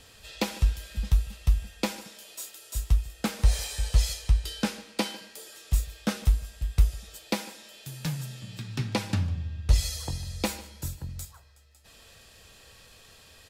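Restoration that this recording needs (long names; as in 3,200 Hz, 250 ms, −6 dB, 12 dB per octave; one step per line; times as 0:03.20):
echo removal 150 ms −21 dB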